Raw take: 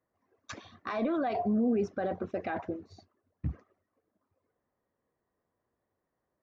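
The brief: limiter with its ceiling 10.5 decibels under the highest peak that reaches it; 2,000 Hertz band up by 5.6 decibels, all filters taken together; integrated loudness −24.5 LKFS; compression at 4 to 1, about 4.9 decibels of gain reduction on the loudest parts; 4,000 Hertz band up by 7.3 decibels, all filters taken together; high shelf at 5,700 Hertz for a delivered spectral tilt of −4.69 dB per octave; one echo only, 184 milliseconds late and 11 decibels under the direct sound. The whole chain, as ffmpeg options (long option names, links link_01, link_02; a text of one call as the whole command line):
ffmpeg -i in.wav -af "equalizer=frequency=2000:width_type=o:gain=6,equalizer=frequency=4000:width_type=o:gain=8.5,highshelf=frequency=5700:gain=-4.5,acompressor=threshold=-30dB:ratio=4,alimiter=level_in=6dB:limit=-24dB:level=0:latency=1,volume=-6dB,aecho=1:1:184:0.282,volume=15.5dB" out.wav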